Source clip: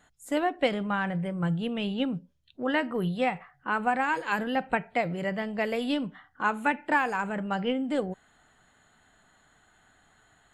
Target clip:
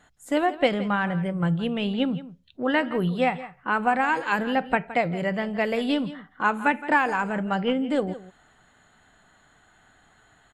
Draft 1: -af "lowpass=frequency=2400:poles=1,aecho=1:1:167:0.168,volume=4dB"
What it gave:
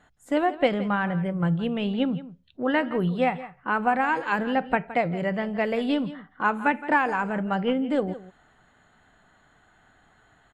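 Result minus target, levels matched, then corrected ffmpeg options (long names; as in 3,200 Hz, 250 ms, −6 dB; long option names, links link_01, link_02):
8,000 Hz band −6.5 dB
-af "lowpass=frequency=7300:poles=1,aecho=1:1:167:0.168,volume=4dB"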